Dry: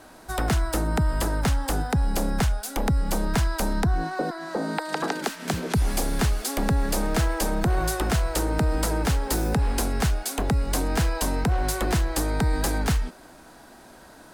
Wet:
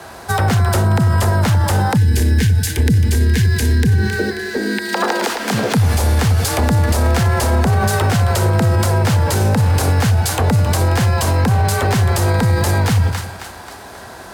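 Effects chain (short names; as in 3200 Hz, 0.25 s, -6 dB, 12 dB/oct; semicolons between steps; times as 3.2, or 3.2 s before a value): bell 260 Hz -10 dB 0.48 oct; split-band echo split 790 Hz, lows 90 ms, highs 0.268 s, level -12 dB; frequency shift +43 Hz; spectral gain 1.97–4.94, 480–1500 Hz -18 dB; maximiser +20 dB; decimation joined by straight lines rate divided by 2×; gain -6 dB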